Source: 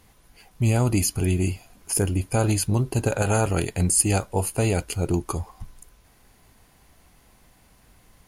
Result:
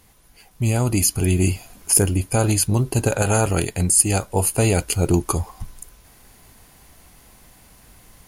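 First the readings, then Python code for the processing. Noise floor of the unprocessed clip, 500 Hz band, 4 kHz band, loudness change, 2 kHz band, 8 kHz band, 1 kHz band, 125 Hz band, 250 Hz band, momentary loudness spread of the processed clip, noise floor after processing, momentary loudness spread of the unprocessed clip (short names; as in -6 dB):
-58 dBFS, +3.5 dB, +4.5 dB, +4.0 dB, +3.5 dB, +6.5 dB, +3.0 dB, +3.0 dB, +3.0 dB, 9 LU, -52 dBFS, 7 LU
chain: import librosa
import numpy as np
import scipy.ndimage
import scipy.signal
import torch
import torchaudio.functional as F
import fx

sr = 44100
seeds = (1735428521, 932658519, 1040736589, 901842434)

y = fx.rider(x, sr, range_db=5, speed_s=0.5)
y = fx.high_shelf(y, sr, hz=5900.0, db=6.0)
y = y * librosa.db_to_amplitude(3.0)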